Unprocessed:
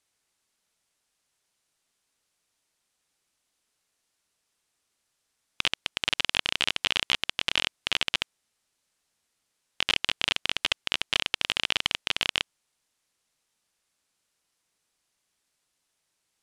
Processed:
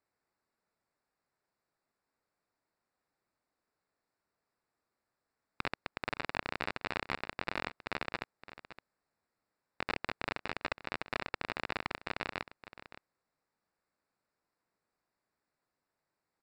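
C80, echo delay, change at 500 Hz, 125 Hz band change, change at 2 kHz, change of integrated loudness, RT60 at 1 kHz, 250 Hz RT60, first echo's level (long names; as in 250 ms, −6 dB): no reverb audible, 566 ms, −0.5 dB, −2.0 dB, −9.0 dB, −12.0 dB, no reverb audible, no reverb audible, −14.5 dB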